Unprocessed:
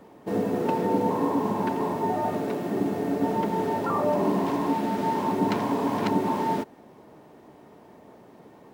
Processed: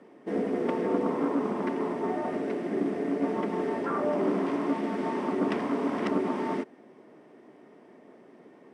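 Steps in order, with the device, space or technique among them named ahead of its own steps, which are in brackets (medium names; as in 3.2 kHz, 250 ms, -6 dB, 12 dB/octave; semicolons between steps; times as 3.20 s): full-range speaker at full volume (loudspeaker Doppler distortion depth 0.44 ms; cabinet simulation 200–8900 Hz, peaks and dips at 250 Hz +4 dB, 370 Hz +4 dB, 880 Hz -6 dB, 2 kHz +5 dB, 4.1 kHz -7 dB, 6.9 kHz -8 dB); trim -3.5 dB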